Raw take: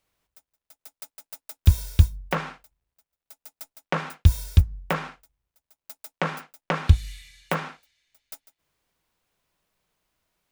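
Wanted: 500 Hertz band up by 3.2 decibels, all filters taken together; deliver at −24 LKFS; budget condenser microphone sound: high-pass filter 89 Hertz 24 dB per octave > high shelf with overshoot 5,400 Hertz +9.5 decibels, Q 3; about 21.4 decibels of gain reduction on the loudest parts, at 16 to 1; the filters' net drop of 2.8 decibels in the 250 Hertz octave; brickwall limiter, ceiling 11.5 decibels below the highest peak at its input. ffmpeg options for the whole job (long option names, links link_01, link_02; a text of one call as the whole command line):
ffmpeg -i in.wav -af "equalizer=frequency=250:width_type=o:gain=-6,equalizer=frequency=500:width_type=o:gain=5,acompressor=threshold=-31dB:ratio=16,alimiter=level_in=2.5dB:limit=-24dB:level=0:latency=1,volume=-2.5dB,highpass=frequency=89:width=0.5412,highpass=frequency=89:width=1.3066,highshelf=frequency=5400:width_type=q:width=3:gain=9.5,volume=14.5dB" out.wav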